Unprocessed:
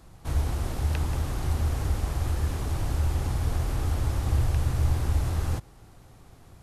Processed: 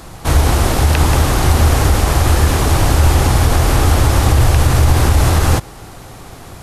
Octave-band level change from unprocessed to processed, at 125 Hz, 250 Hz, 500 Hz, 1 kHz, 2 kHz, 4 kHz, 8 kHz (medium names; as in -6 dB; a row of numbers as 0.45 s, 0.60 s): +14.0 dB, +17.5 dB, +19.5 dB, +20.5 dB, +21.0 dB, +21.0 dB, +21.0 dB